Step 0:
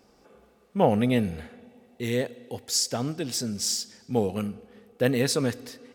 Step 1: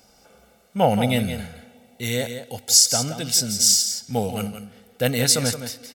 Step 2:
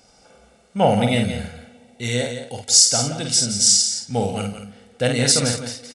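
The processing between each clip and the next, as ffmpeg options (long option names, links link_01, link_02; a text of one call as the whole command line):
ffmpeg -i in.wav -af "highshelf=frequency=3200:gain=11.5,aecho=1:1:1.4:0.53,aecho=1:1:172:0.335,volume=1dB" out.wav
ffmpeg -i in.wav -filter_complex "[0:a]asplit=2[link_01][link_02];[link_02]adelay=50,volume=-5dB[link_03];[link_01][link_03]amix=inputs=2:normalize=0,aresample=22050,aresample=44100,volume=1dB" out.wav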